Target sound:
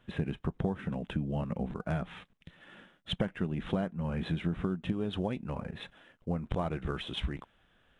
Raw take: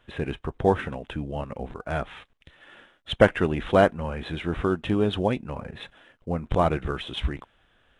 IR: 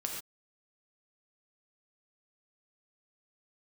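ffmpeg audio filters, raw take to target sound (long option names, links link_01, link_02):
-af "asetnsamples=nb_out_samples=441:pad=0,asendcmd='4.92 equalizer g 5.5',equalizer=frequency=180:width=1.6:gain=14,acompressor=threshold=-23dB:ratio=20,volume=-4.5dB"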